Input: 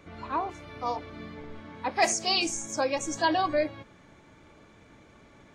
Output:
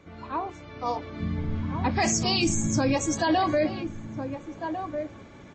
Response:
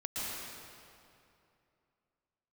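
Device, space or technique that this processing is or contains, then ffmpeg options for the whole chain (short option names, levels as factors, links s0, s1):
low-bitrate web radio: -filter_complex "[0:a]asplit=3[s0][s1][s2];[s0]afade=t=out:st=1.2:d=0.02[s3];[s1]asubboost=boost=11.5:cutoff=190,afade=t=in:st=1.2:d=0.02,afade=t=out:st=2.94:d=0.02[s4];[s2]afade=t=in:st=2.94:d=0.02[s5];[s3][s4][s5]amix=inputs=3:normalize=0,highpass=f=41:p=1,lowshelf=f=480:g=4.5,asplit=2[s6][s7];[s7]adelay=1399,volume=0.282,highshelf=f=4000:g=-31.5[s8];[s6][s8]amix=inputs=2:normalize=0,dynaudnorm=f=230:g=9:m=2.24,alimiter=limit=0.224:level=0:latency=1:release=16,volume=0.794" -ar 22050 -c:a libmp3lame -b:a 32k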